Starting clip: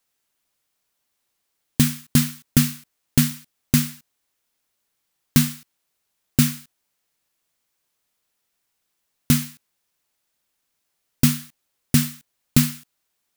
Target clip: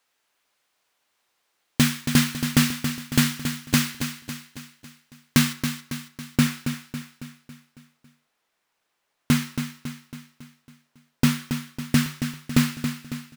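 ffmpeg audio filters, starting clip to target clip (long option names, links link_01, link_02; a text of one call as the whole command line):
ffmpeg -i in.wav -filter_complex "[0:a]bandreject=frequency=185.5:width_type=h:width=4,bandreject=frequency=371:width_type=h:width=4,bandreject=frequency=556.5:width_type=h:width=4,bandreject=frequency=742:width_type=h:width=4,bandreject=frequency=927.5:width_type=h:width=4,bandreject=frequency=1113:width_type=h:width=4,bandreject=frequency=1298.5:width_type=h:width=4,bandreject=frequency=1484:width_type=h:width=4,bandreject=frequency=1669.5:width_type=h:width=4,bandreject=frequency=1855:width_type=h:width=4,bandreject=frequency=2040.5:width_type=h:width=4,bandreject=frequency=2226:width_type=h:width=4,bandreject=frequency=2411.5:width_type=h:width=4,bandreject=frequency=2597:width_type=h:width=4,bandreject=frequency=2782.5:width_type=h:width=4,bandreject=frequency=2968:width_type=h:width=4,bandreject=frequency=3153.5:width_type=h:width=4,bandreject=frequency=3339:width_type=h:width=4,bandreject=frequency=3524.5:width_type=h:width=4,bandreject=frequency=3710:width_type=h:width=4,bandreject=frequency=3895.5:width_type=h:width=4,bandreject=frequency=4081:width_type=h:width=4,bandreject=frequency=4266.5:width_type=h:width=4,bandreject=frequency=4452:width_type=h:width=4,bandreject=frequency=4637.5:width_type=h:width=4,bandreject=frequency=4823:width_type=h:width=4,bandreject=frequency=5008.5:width_type=h:width=4,bandreject=frequency=5194:width_type=h:width=4,bandreject=frequency=5379.5:width_type=h:width=4,bandreject=frequency=5565:width_type=h:width=4,bandreject=frequency=5750.5:width_type=h:width=4,bandreject=frequency=5936:width_type=h:width=4,asetnsamples=nb_out_samples=441:pad=0,asendcmd='5.53 lowpass f 1300',asplit=2[link_01][link_02];[link_02]highpass=frequency=720:poles=1,volume=15dB,asoftclip=type=tanh:threshold=-1.5dB[link_03];[link_01][link_03]amix=inputs=2:normalize=0,lowpass=frequency=2400:poles=1,volume=-6dB,aecho=1:1:276|552|828|1104|1380|1656:0.376|0.195|0.102|0.0528|0.0275|0.0143" out.wav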